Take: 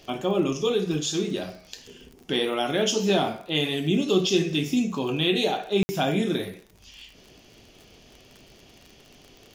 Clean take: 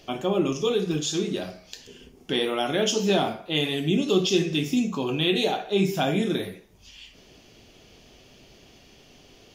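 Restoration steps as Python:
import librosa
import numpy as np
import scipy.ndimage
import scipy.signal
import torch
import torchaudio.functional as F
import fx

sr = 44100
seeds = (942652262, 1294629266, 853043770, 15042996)

y = fx.fix_declick_ar(x, sr, threshold=6.5)
y = fx.fix_interpolate(y, sr, at_s=(5.83,), length_ms=60.0)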